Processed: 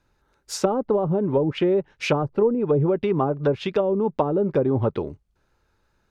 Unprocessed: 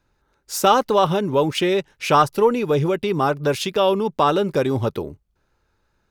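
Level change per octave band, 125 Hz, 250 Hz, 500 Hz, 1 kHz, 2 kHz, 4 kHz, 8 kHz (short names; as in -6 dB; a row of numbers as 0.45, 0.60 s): 0.0 dB, 0.0 dB, -2.0 dB, -10.0 dB, -7.0 dB, -10.0 dB, n/a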